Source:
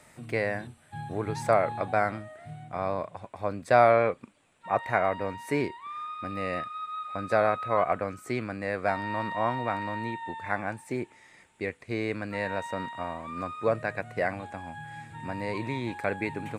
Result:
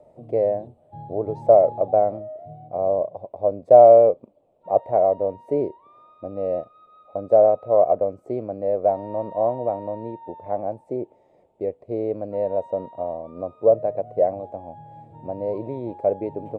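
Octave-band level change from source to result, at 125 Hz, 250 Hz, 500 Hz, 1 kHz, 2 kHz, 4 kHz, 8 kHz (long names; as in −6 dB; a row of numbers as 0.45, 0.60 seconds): −1.0 dB, +1.5 dB, +11.0 dB, +3.5 dB, below −20 dB, below −20 dB, can't be measured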